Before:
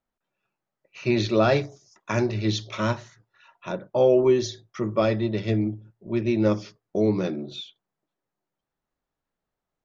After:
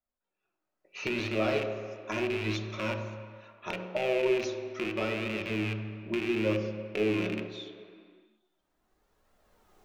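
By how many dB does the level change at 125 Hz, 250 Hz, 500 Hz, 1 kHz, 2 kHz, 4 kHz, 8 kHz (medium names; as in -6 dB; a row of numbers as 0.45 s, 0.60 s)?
-9.5 dB, -7.5 dB, -7.5 dB, -7.5 dB, 0.0 dB, -4.5 dB, no reading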